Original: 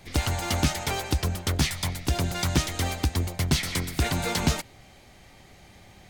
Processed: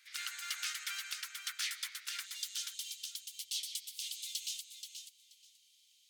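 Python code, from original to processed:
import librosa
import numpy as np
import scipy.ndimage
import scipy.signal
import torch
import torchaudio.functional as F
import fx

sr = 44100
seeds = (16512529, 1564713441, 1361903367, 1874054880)

y = fx.ellip_highpass(x, sr, hz=fx.steps((0.0, 1400.0), (2.25, 3000.0)), order=4, stop_db=60)
y = fx.echo_feedback(y, sr, ms=480, feedback_pct=17, wet_db=-8)
y = F.gain(torch.from_numpy(y), -8.0).numpy()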